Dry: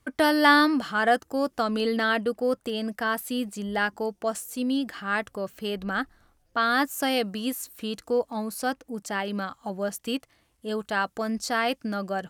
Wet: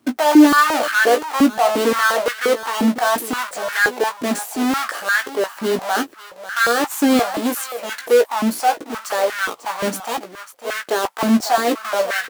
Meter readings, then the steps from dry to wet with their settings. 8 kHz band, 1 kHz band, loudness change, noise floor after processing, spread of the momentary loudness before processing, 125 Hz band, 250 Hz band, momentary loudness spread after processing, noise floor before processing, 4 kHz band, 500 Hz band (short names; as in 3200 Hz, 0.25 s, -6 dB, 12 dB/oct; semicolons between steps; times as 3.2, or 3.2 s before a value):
+12.0 dB, +8.0 dB, +8.5 dB, -42 dBFS, 10 LU, n/a, +9.0 dB, 11 LU, -69 dBFS, +6.0 dB, +9.0 dB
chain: half-waves squared off; limiter -18.5 dBFS, peak gain reduction 11 dB; transient shaper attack -3 dB, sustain +3 dB; doubler 17 ms -6.5 dB; echo 0.545 s -13 dB; stepped high-pass 5.7 Hz 250–1600 Hz; gain +2.5 dB